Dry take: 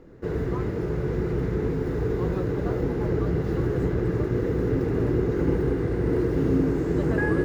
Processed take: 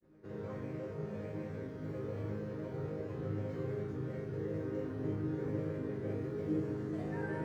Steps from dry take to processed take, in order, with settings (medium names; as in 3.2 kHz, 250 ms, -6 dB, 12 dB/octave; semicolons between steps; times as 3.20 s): frequency shift +29 Hz; granulator, pitch spread up and down by 3 st; chord resonator G#2 major, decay 0.82 s; trim +5.5 dB